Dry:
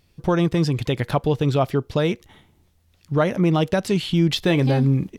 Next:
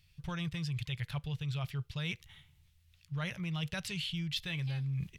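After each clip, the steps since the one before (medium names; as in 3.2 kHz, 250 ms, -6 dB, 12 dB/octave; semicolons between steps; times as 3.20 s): FFT filter 150 Hz 0 dB, 250 Hz -23 dB, 700 Hz -15 dB, 2.7 kHz +4 dB, 5.9 kHz -1 dB; reverse; compression, threshold -29 dBFS, peak gain reduction 11.5 dB; reverse; trim -5 dB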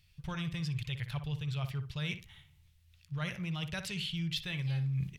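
filtered feedback delay 60 ms, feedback 23%, low-pass 2.1 kHz, level -9 dB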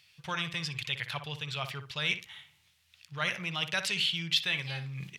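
frequency weighting A; trim +8.5 dB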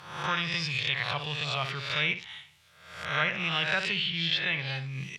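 reverse spectral sustain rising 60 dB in 0.76 s; low-pass that closes with the level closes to 2.4 kHz, closed at -24 dBFS; trim +2.5 dB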